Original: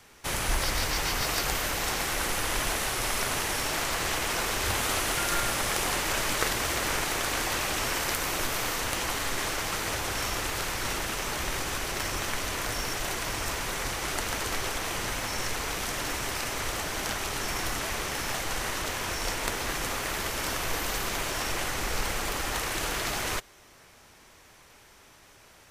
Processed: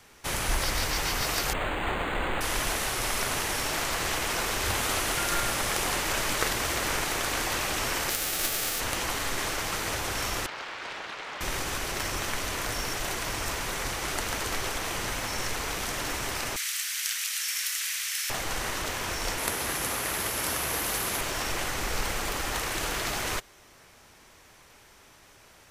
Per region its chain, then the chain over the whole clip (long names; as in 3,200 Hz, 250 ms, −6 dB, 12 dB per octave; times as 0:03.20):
0:01.53–0:02.41: double-tracking delay 29 ms −4.5 dB + linearly interpolated sample-rate reduction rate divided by 8×
0:08.09–0:08.79: spectral envelope flattened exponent 0.3 + Butterworth band-reject 1,000 Hz, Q 6.5
0:10.46–0:11.41: high-pass filter 960 Hz 6 dB per octave + high-frequency loss of the air 240 metres + highs frequency-modulated by the lows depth 0.54 ms
0:16.56–0:18.30: inverse Chebyshev high-pass filter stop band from 290 Hz, stop band 80 dB + high-shelf EQ 4,700 Hz +7.5 dB
0:19.38–0:21.21: high-pass filter 58 Hz + parametric band 11,000 Hz +11.5 dB 0.36 octaves
whole clip: no processing